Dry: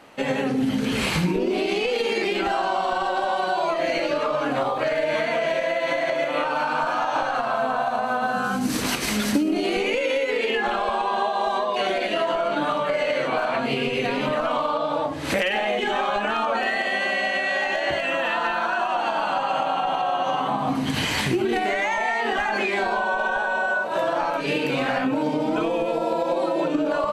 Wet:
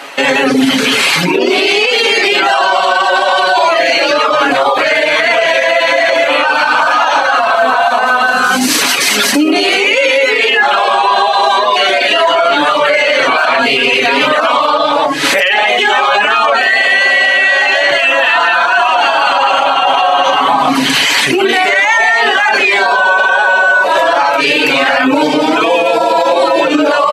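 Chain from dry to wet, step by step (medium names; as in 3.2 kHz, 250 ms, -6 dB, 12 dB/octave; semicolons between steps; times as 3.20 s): high-pass 270 Hz 12 dB/octave; tilt shelf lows -6 dB; reverb removal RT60 0.54 s; treble shelf 6.9 kHz -5.5 dB; comb 7.2 ms, depth 42%; loudness maximiser +21 dB; trim -1 dB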